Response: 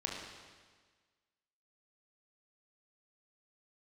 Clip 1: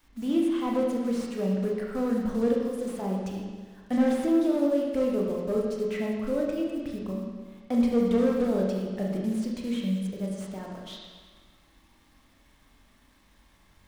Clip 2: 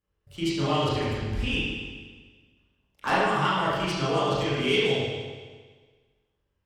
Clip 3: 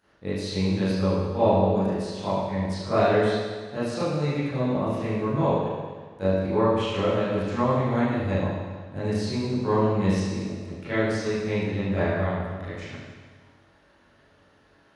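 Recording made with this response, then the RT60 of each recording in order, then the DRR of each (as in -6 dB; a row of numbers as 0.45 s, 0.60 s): 1; 1.5 s, 1.5 s, 1.5 s; -2.0 dB, -9.5 dB, -13.5 dB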